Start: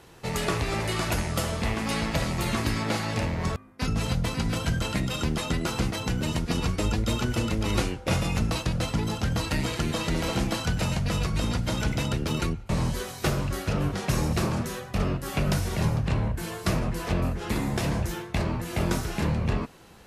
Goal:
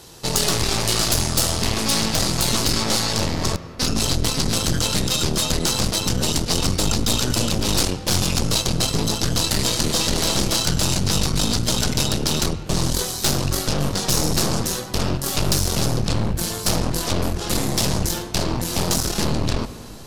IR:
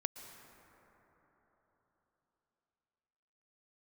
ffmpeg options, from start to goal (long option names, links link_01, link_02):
-filter_complex "[0:a]aeval=exprs='0.266*(cos(1*acos(clip(val(0)/0.266,-1,1)))-cos(1*PI/2))+0.119*(cos(3*acos(clip(val(0)/0.266,-1,1)))-cos(3*PI/2))+0.133*(cos(5*acos(clip(val(0)/0.266,-1,1)))-cos(5*PI/2))+0.075*(cos(8*acos(clip(val(0)/0.266,-1,1)))-cos(8*PI/2))':channel_layout=same,highshelf=frequency=3200:width_type=q:width=1.5:gain=13,asplit=2[link_01][link_02];[1:a]atrim=start_sample=2205,asetrate=57330,aresample=44100,lowpass=3500[link_03];[link_02][link_03]afir=irnorm=-1:irlink=0,volume=0dB[link_04];[link_01][link_04]amix=inputs=2:normalize=0,volume=-5.5dB"